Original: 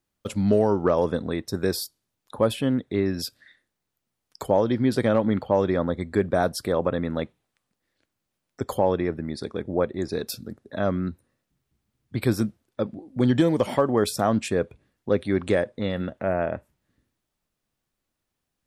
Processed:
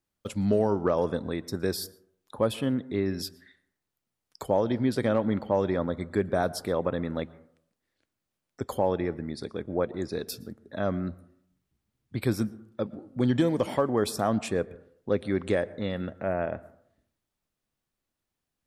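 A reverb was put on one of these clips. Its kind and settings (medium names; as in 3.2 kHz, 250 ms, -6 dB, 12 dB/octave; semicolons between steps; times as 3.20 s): plate-style reverb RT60 0.64 s, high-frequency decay 0.25×, pre-delay 105 ms, DRR 20 dB; trim -4 dB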